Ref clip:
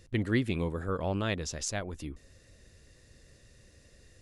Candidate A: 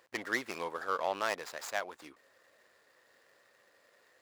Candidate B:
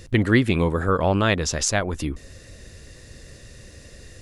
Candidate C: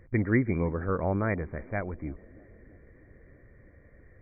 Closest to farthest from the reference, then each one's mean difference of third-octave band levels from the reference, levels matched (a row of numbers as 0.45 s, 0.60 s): B, C, A; 2.0 dB, 6.5 dB, 10.0 dB